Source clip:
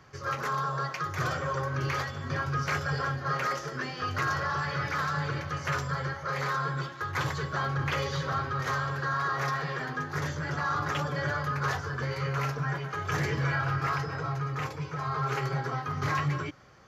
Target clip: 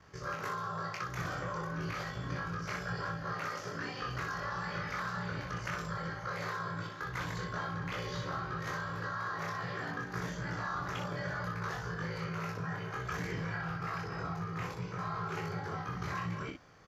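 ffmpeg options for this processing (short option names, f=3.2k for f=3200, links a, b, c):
-af "acompressor=threshold=-31dB:ratio=6,aeval=exprs='val(0)*sin(2*PI*30*n/s)':c=same,aecho=1:1:24|62:0.708|0.562,volume=-2.5dB"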